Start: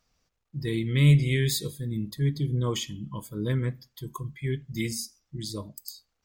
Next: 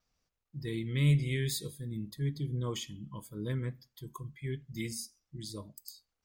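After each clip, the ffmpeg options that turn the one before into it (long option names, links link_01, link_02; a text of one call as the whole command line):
ffmpeg -i in.wav -af "adynamicequalizer=threshold=0.00178:dfrequency=9400:dqfactor=6.4:tfrequency=9400:tqfactor=6.4:attack=5:release=100:ratio=0.375:range=2.5:mode=boostabove:tftype=bell,volume=-7.5dB" out.wav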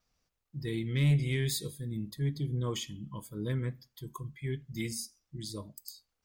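ffmpeg -i in.wav -af "asoftclip=type=tanh:threshold=-20.5dB,volume=2dB" out.wav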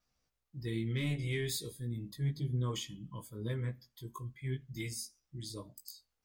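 ffmpeg -i in.wav -af "flanger=delay=15.5:depth=2.3:speed=0.4" out.wav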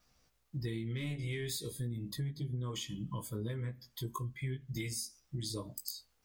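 ffmpeg -i in.wav -af "acompressor=threshold=-45dB:ratio=12,volume=10dB" out.wav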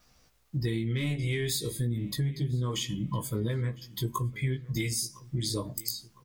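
ffmpeg -i in.wav -filter_complex "[0:a]asplit=2[link_01][link_02];[link_02]adelay=1007,lowpass=frequency=3900:poles=1,volume=-20.5dB,asplit=2[link_03][link_04];[link_04]adelay=1007,lowpass=frequency=3900:poles=1,volume=0.5,asplit=2[link_05][link_06];[link_06]adelay=1007,lowpass=frequency=3900:poles=1,volume=0.5,asplit=2[link_07][link_08];[link_08]adelay=1007,lowpass=frequency=3900:poles=1,volume=0.5[link_09];[link_01][link_03][link_05][link_07][link_09]amix=inputs=5:normalize=0,volume=8dB" out.wav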